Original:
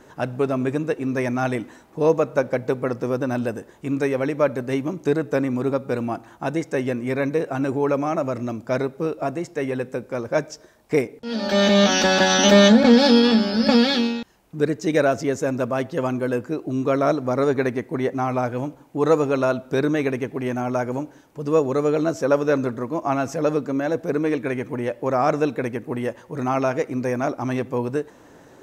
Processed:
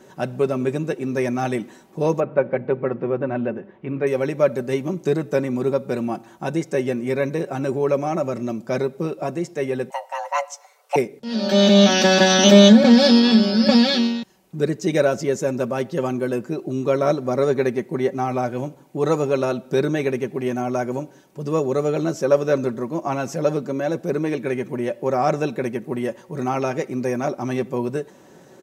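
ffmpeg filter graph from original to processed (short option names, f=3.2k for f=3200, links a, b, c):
-filter_complex "[0:a]asettb=1/sr,asplit=3[a][b][c];[a]atrim=end=2.204[d];[b]atrim=start=2.2:end=4.07,asetpts=PTS-STARTPTS,afade=t=in:d=0.004:c=qsin,afade=t=out:st=1.866:d=0.004:c=qsin,lowpass=f=2.6k:w=0.5412,lowpass=f=2.6k:w=1.3066,bandreject=f=50:t=h:w=6,bandreject=f=100:t=h:w=6,bandreject=f=150:t=h:w=6,bandreject=f=200:t=h:w=6,bandreject=f=250:t=h:w=6,bandreject=f=300:t=h:w=6,bandreject=f=350:t=h:w=6[e];[c]atrim=start=4.066[f];[d][e]acrossfade=d=0.004:c1=hsin:c2=qsin[g];[g][f]acrossfade=d=0.004:c1=qsin:c2=hsin,asettb=1/sr,asplit=3[h][i][j];[h]atrim=end=9.904[k];[i]atrim=start=9.9:end=10.96,asetpts=PTS-STARTPTS,afade=t=in:d=0.004:c=qsin,afade=t=out:st=1.056:d=0.004:c=qsin,aecho=1:1:6.6:0.31,atrim=end_sample=46746,afreqshift=410[l];[j]atrim=start=10.956[m];[k][l]acrossfade=d=0.004:c1=hsin:c2=qsin[n];[n][m]acrossfade=d=0.004:c1=qsin:c2=hsin,highpass=96,equalizer=f=1.3k:w=0.74:g=-5,aecho=1:1:5.3:0.51,volume=1.5dB"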